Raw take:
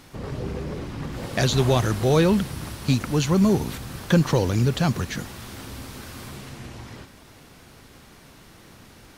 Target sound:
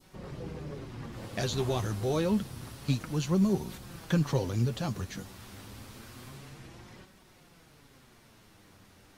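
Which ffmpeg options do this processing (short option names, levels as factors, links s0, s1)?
-af "flanger=delay=5.3:depth=5.1:regen=42:speed=0.28:shape=sinusoidal,adynamicequalizer=threshold=0.00501:dfrequency=1900:dqfactor=1:tfrequency=1900:tqfactor=1:attack=5:release=100:ratio=0.375:range=2:mode=cutabove:tftype=bell,volume=0.531"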